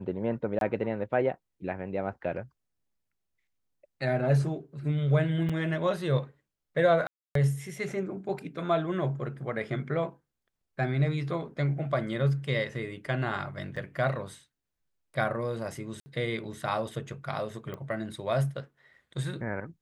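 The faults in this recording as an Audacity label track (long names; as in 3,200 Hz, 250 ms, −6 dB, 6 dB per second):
0.590000	0.610000	drop-out 22 ms
5.490000	5.500000	drop-out 5.6 ms
7.070000	7.350000	drop-out 283 ms
13.760000	13.770000	drop-out 5.5 ms
16.000000	16.060000	drop-out 60 ms
17.740000	17.740000	click −26 dBFS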